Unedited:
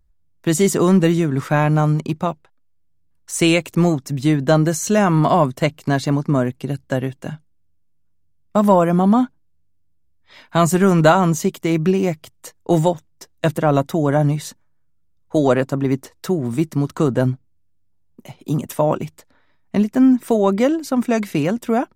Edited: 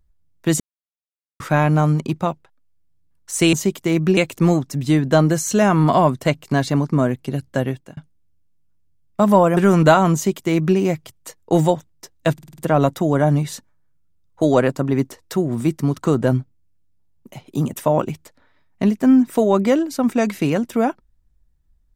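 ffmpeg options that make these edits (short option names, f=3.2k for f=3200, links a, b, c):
-filter_complex "[0:a]asplit=12[a][b][c][d][e][f][g][h][i][j][k][l];[a]atrim=end=0.6,asetpts=PTS-STARTPTS,afade=t=out:st=0.596:d=0.004:c=hsin[m];[b]atrim=start=0.6:end=1.4,asetpts=PTS-STARTPTS,volume=0[n];[c]atrim=start=1.4:end=3.532,asetpts=PTS-STARTPTS,afade=t=in:d=0.004:c=hsin[o];[d]atrim=start=11.318:end=11.962[p];[e]atrim=start=3.528:end=7.33,asetpts=PTS-STARTPTS,afade=t=out:st=3.552:d=0.25[q];[f]atrim=start=7.33:end=8.932,asetpts=PTS-STARTPTS,afade=t=in:d=0.004:c=hsin[r];[g]atrim=start=10.748:end=13.562[s];[h]atrim=start=13.508:end=13.562[t];[i]atrim=start=13.508:end=13.562[u];[j]atrim=start=13.508:end=13.562[v];[k]atrim=start=13.508:end=13.562[w];[l]atrim=start=13.508[x];[m][n][o]concat=n=3:v=0:a=1[y];[y][p]acrossfade=d=0.004:c1=hsin:c2=hsin[z];[q][r]concat=n=2:v=0:a=1[aa];[z][aa]acrossfade=d=0.004:c1=hsin:c2=hsin[ab];[ab][s]acrossfade=d=0.004:c1=hsin:c2=hsin[ac];[ac][t]acrossfade=d=0.004:c1=hsin:c2=hsin[ad];[ad][u]acrossfade=d=0.004:c1=hsin:c2=hsin[ae];[ae][v]acrossfade=d=0.004:c1=hsin:c2=hsin[af];[af][w]acrossfade=d=0.004:c1=hsin:c2=hsin[ag];[ag][x]acrossfade=d=0.004:c1=hsin:c2=hsin"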